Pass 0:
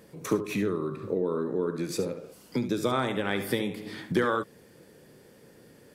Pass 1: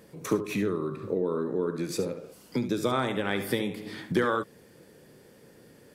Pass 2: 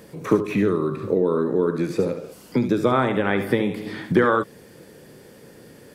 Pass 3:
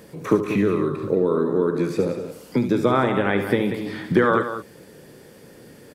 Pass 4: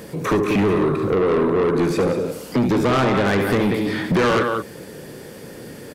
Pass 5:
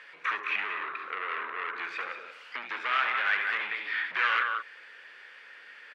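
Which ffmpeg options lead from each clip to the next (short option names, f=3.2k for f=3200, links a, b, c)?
-af anull
-filter_complex "[0:a]acrossover=split=2600[a][b];[b]acompressor=threshold=-53dB:ratio=4:attack=1:release=60[c];[a][c]amix=inputs=2:normalize=0,volume=8dB"
-af "aecho=1:1:187:0.316"
-af "asoftclip=type=tanh:threshold=-23.5dB,volume=9dB"
-af "asuperpass=centerf=2000:order=4:qfactor=1.3"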